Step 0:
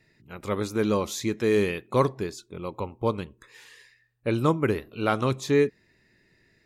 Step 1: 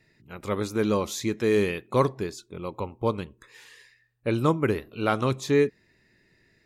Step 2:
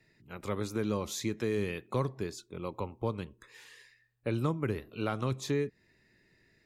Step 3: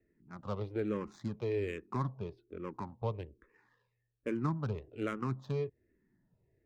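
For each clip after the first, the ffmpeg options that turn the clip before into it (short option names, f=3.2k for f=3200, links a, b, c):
-af anull
-filter_complex "[0:a]acrossover=split=170[a][b];[b]acompressor=threshold=-28dB:ratio=3[c];[a][c]amix=inputs=2:normalize=0,volume=-3.5dB"
-filter_complex "[0:a]adynamicsmooth=sensitivity=5.5:basefreq=810,asplit=2[a][b];[b]afreqshift=-1.2[c];[a][c]amix=inputs=2:normalize=1"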